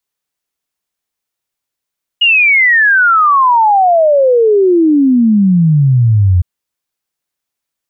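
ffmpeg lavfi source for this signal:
-f lavfi -i "aevalsrc='0.531*clip(min(t,4.21-t)/0.01,0,1)*sin(2*PI*2900*4.21/log(86/2900)*(exp(log(86/2900)*t/4.21)-1))':d=4.21:s=44100"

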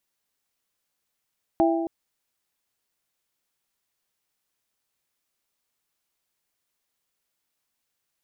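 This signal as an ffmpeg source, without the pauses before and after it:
-f lavfi -i "aevalsrc='0.126*pow(10,-3*t/1.68)*sin(2*PI*332*t)+0.106*pow(10,-3*t/1.034)*sin(2*PI*664*t)+0.0891*pow(10,-3*t/0.91)*sin(2*PI*796.8*t)':d=0.27:s=44100"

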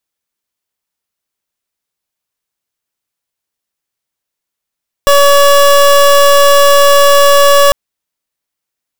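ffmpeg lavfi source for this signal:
-f lavfi -i "aevalsrc='0.531*(2*lt(mod(567*t,1),0.26)-1)':d=2.65:s=44100"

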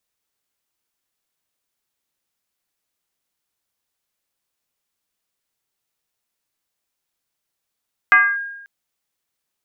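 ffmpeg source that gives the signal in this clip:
-f lavfi -i "aevalsrc='0.501*pow(10,-3*t/0.95)*sin(2*PI*1620*t+1.1*clip(1-t/0.26,0,1)*sin(2*PI*0.27*1620*t))':d=0.54:s=44100"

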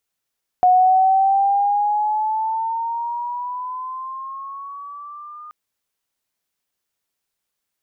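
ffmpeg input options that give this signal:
-f lavfi -i "aevalsrc='pow(10,(-9.5-25*t/4.88)/20)*sin(2*PI*727*4.88/(9*log(2)/12)*(exp(9*log(2)/12*t/4.88)-1))':d=4.88:s=44100"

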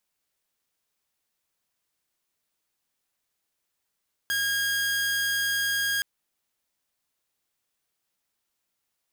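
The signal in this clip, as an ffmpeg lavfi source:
-f lavfi -i "aevalsrc='0.0841*(2*mod(1630*t,1)-1)':d=1.72:s=44100"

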